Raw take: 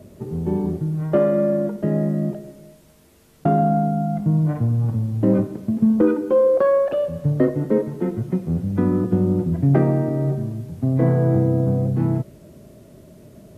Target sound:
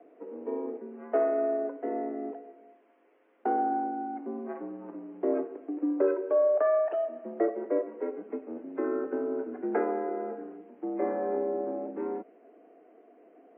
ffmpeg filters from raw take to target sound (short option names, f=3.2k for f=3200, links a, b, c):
-filter_complex "[0:a]asettb=1/sr,asplit=3[a][b][c];[a]atrim=end=8.844[d];[b]atrim=start=8.84:end=10.57,asetpts=PTS-STARTPTS,afade=t=in:d=0.004:c=qsin,afade=t=out:st=1.726:d=0.004:c=qsin,equalizer=f=1.4k:t=o:w=0.23:g=13[e];[c]atrim=start=10.566[f];[d][e]acrossfade=d=0.004:c1=hsin:c2=qsin[g];[g][f]acrossfade=d=0.004:c1=qsin:c2=hsin,highpass=f=240:t=q:w=0.5412,highpass=f=240:t=q:w=1.307,lowpass=f=2.4k:t=q:w=0.5176,lowpass=f=2.4k:t=q:w=0.7071,lowpass=f=2.4k:t=q:w=1.932,afreqshift=74,volume=-7.5dB" -ar 22050 -c:a libmp3lame -b:a 24k